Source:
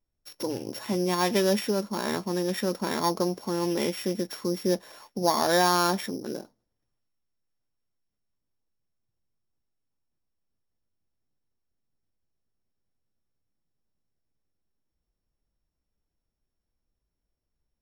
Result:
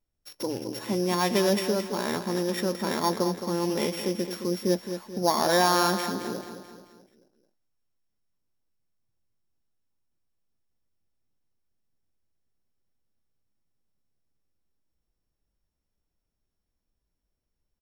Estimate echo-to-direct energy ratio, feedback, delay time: −8.5 dB, 47%, 217 ms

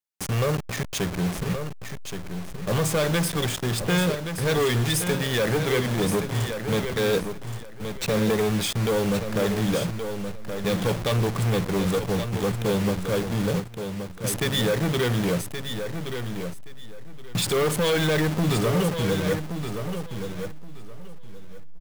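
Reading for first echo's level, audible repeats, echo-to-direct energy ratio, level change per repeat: −8.0 dB, 2, −8.0 dB, −14.0 dB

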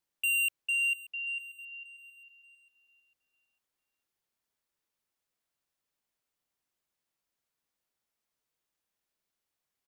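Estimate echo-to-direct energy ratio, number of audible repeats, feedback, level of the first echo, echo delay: −18.5 dB, 2, 38%, −19.0 dB, 583 ms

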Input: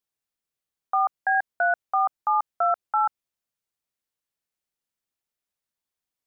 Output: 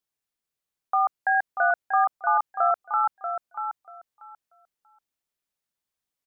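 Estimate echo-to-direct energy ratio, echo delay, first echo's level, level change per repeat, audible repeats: −8.0 dB, 637 ms, −8.0 dB, −15.5 dB, 2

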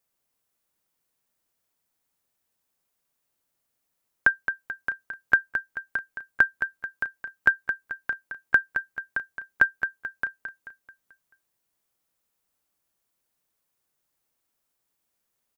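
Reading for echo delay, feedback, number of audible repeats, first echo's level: 218 ms, 46%, 4, −8.5 dB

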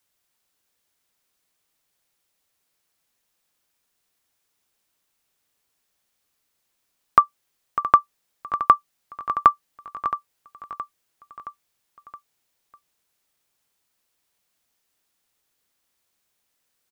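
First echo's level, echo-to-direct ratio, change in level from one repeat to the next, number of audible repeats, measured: −13.5 dB, −12.0 dB, −5.0 dB, 4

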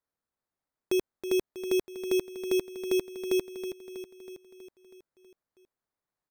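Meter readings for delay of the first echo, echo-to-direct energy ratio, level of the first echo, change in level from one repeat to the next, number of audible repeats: 322 ms, −8.0 dB, −10.0 dB, −4.5 dB, 6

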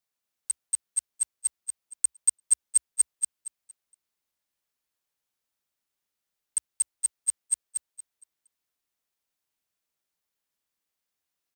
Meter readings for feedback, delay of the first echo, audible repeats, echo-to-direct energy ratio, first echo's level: 27%, 232 ms, 3, −4.5 dB, −5.0 dB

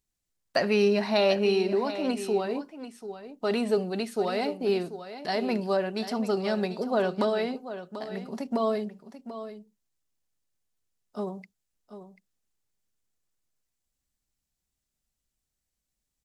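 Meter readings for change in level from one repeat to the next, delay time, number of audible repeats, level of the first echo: repeats not evenly spaced, 739 ms, 1, −12.0 dB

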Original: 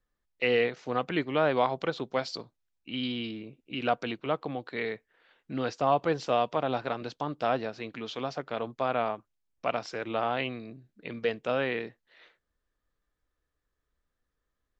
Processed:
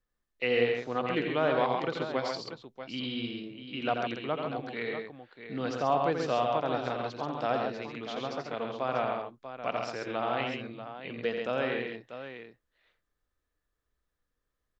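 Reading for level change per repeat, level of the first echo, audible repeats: repeats not evenly spaced, −6.5 dB, 3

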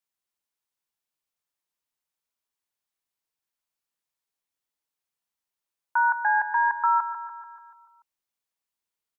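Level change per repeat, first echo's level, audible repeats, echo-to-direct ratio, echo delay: −4.5 dB, −11.0 dB, 6, −9.0 dB, 145 ms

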